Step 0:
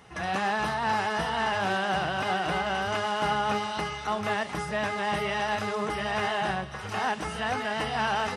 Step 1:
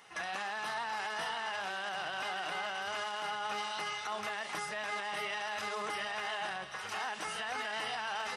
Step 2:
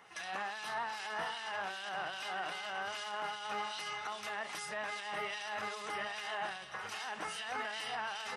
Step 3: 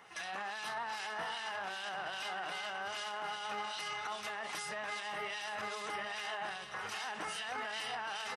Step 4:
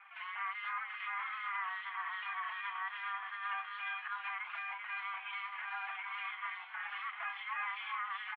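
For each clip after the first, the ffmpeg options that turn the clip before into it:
ffmpeg -i in.wav -af "highpass=frequency=1200:poles=1,alimiter=level_in=4dB:limit=-24dB:level=0:latency=1:release=24,volume=-4dB" out.wav
ffmpeg -i in.wav -filter_complex "[0:a]acrossover=split=2300[link_01][link_02];[link_01]aeval=exprs='val(0)*(1-0.7/2+0.7/2*cos(2*PI*2.5*n/s))':channel_layout=same[link_03];[link_02]aeval=exprs='val(0)*(1-0.7/2-0.7/2*cos(2*PI*2.5*n/s))':channel_layout=same[link_04];[link_03][link_04]amix=inputs=2:normalize=0,volume=1dB" out.wav
ffmpeg -i in.wav -af "alimiter=level_in=8.5dB:limit=-24dB:level=0:latency=1:release=15,volume=-8.5dB,aecho=1:1:866:0.168,volume=1.5dB" out.wav
ffmpeg -i in.wav -filter_complex "[0:a]highpass=frequency=400:width_type=q:width=0.5412,highpass=frequency=400:width_type=q:width=1.307,lowpass=frequency=2400:width_type=q:width=0.5176,lowpass=frequency=2400:width_type=q:width=0.7071,lowpass=frequency=2400:width_type=q:width=1.932,afreqshift=360,asplit=2[link_01][link_02];[link_02]adelay=4.5,afreqshift=-2.6[link_03];[link_01][link_03]amix=inputs=2:normalize=1,volume=3.5dB" out.wav

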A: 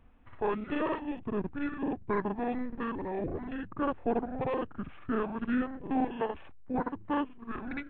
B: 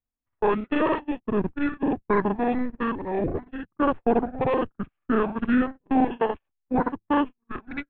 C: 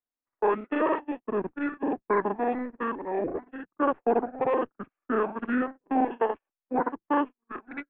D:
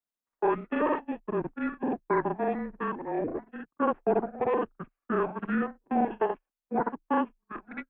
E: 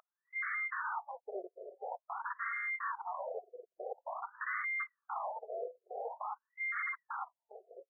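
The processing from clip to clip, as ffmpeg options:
ffmpeg -i in.wav -af "agate=range=-41dB:threshold=-35dB:ratio=16:detection=peak,volume=8.5dB" out.wav
ffmpeg -i in.wav -filter_complex "[0:a]acrossover=split=250 2500:gain=0.112 1 0.112[link_01][link_02][link_03];[link_01][link_02][link_03]amix=inputs=3:normalize=0,volume=-1dB" out.wav
ffmpeg -i in.wav -af "afreqshift=-27,volume=-1.5dB" out.wav
ffmpeg -i in.wav -af "aeval=exprs='val(0)+0.0178*sin(2*PI*2100*n/s)':channel_layout=same,aeval=exprs='0.0335*(abs(mod(val(0)/0.0335+3,4)-2)-1)':channel_layout=same,afftfilt=real='re*between(b*sr/1024,490*pow(1600/490,0.5+0.5*sin(2*PI*0.48*pts/sr))/1.41,490*pow(1600/490,0.5+0.5*sin(2*PI*0.48*pts/sr))*1.41)':imag='im*between(b*sr/1024,490*pow(1600/490,0.5+0.5*sin(2*PI*0.48*pts/sr))/1.41,490*pow(1600/490,0.5+0.5*sin(2*PI*0.48*pts/sr))*1.41)':win_size=1024:overlap=0.75,volume=2dB" out.wav

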